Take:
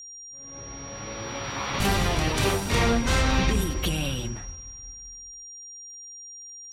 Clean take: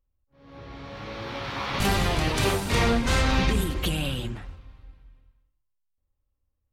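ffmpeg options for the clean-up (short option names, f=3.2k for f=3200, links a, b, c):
-af "adeclick=t=4,bandreject=f=5.7k:w=30,asetnsamples=n=441:p=0,asendcmd='5.43 volume volume 5.5dB',volume=0dB"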